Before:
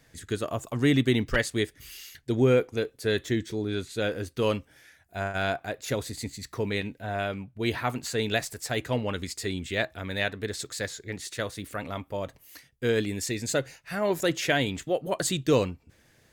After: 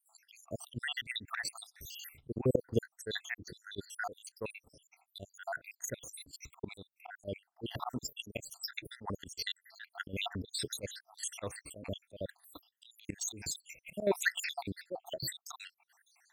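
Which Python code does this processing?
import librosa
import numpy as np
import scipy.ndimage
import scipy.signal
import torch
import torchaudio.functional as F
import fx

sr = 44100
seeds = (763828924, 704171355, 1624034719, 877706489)

y = fx.spec_dropout(x, sr, seeds[0], share_pct=80)
y = fx.auto_swell(y, sr, attack_ms=170.0)
y = fx.level_steps(y, sr, step_db=11)
y = y * librosa.db_to_amplitude(7.5)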